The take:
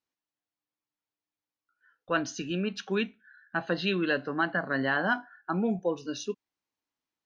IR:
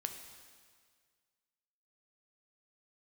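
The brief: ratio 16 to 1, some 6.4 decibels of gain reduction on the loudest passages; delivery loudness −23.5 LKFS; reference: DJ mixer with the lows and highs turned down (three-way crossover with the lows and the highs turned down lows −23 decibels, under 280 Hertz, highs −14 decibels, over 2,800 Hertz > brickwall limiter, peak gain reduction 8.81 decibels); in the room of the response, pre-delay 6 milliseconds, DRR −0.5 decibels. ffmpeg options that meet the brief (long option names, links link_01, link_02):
-filter_complex "[0:a]acompressor=threshold=-28dB:ratio=16,asplit=2[link_01][link_02];[1:a]atrim=start_sample=2205,adelay=6[link_03];[link_02][link_03]afir=irnorm=-1:irlink=0,volume=1dB[link_04];[link_01][link_04]amix=inputs=2:normalize=0,acrossover=split=280 2800:gain=0.0708 1 0.2[link_05][link_06][link_07];[link_05][link_06][link_07]amix=inputs=3:normalize=0,volume=12.5dB,alimiter=limit=-11.5dB:level=0:latency=1"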